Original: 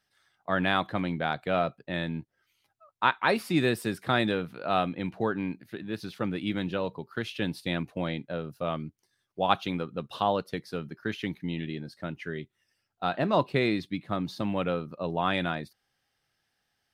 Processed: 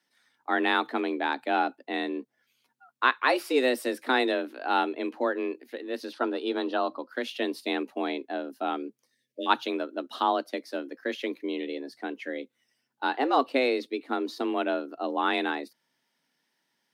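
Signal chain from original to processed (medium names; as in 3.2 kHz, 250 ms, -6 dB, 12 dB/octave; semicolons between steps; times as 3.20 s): 9.13–9.47 s: spectral selection erased 490–1500 Hz; frequency shift +130 Hz; 6.13–7.09 s: cabinet simulation 140–9600 Hz, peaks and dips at 870 Hz +8 dB, 1.3 kHz +7 dB, 2.2 kHz -9 dB, 4.4 kHz +5 dB, 7.2 kHz -10 dB; trim +1 dB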